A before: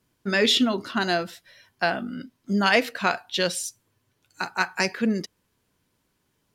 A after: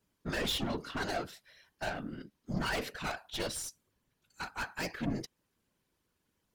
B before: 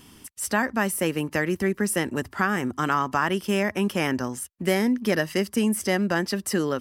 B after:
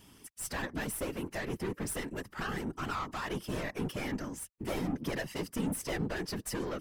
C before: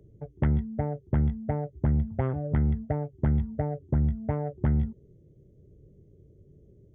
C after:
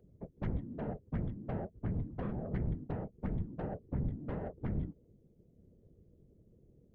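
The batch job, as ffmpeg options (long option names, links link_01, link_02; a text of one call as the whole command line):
ffmpeg -i in.wav -af "aeval=exprs='(tanh(17.8*val(0)+0.45)-tanh(0.45))/17.8':channel_layout=same,afftfilt=real='hypot(re,im)*cos(2*PI*random(0))':imag='hypot(re,im)*sin(2*PI*random(1))':win_size=512:overlap=0.75" out.wav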